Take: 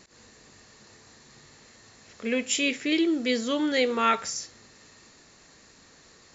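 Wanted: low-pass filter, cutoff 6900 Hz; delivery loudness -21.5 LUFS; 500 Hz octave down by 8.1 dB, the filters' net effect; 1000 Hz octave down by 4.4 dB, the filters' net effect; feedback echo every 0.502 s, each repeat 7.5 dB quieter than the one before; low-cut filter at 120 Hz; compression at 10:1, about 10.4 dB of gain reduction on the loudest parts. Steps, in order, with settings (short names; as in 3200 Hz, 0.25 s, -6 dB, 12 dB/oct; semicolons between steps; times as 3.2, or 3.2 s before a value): HPF 120 Hz; LPF 6900 Hz; bell 500 Hz -8.5 dB; bell 1000 Hz -5 dB; compressor 10:1, threshold -33 dBFS; feedback echo 0.502 s, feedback 42%, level -7.5 dB; gain +15 dB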